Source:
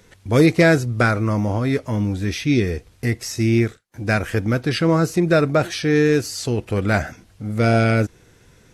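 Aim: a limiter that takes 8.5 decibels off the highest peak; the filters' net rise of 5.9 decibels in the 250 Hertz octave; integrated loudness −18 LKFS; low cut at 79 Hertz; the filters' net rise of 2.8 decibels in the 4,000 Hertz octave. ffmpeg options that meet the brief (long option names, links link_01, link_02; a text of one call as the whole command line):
ffmpeg -i in.wav -af "highpass=79,equalizer=frequency=250:width_type=o:gain=8,equalizer=frequency=4000:width_type=o:gain=3.5,volume=1.5dB,alimiter=limit=-6dB:level=0:latency=1" out.wav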